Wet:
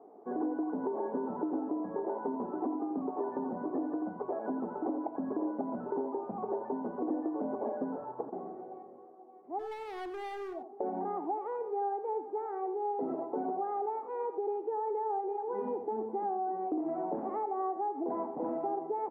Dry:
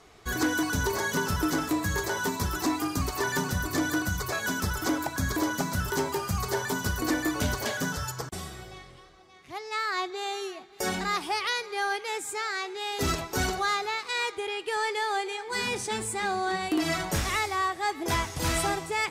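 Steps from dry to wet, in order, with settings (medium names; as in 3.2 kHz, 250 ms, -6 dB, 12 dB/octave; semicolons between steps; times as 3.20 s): elliptic band-pass 240–840 Hz, stop band 70 dB; in parallel at -2 dB: peak limiter -27.5 dBFS, peak gain reduction 9.5 dB; on the sum: compression, threshold -30 dBFS, peak gain reduction 9 dB; 9.59–10.55 s: hard clipper -38 dBFS, distortion -18 dB; on a send: delay 87 ms -11 dB; on the sum: trim -1 dB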